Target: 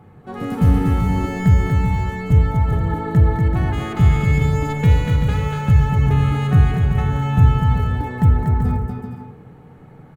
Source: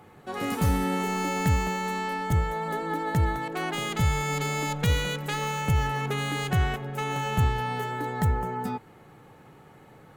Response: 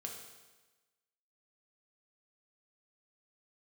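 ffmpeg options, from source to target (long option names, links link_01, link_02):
-filter_complex "[0:a]bass=frequency=250:gain=11,treble=frequency=4000:gain=-4,aecho=1:1:240|384|470.4|522.2|553.3:0.631|0.398|0.251|0.158|0.1,asplit=2[link_01][link_02];[1:a]atrim=start_sample=2205,lowpass=2300[link_03];[link_02][link_03]afir=irnorm=-1:irlink=0,volume=1dB[link_04];[link_01][link_04]amix=inputs=2:normalize=0,volume=-4dB"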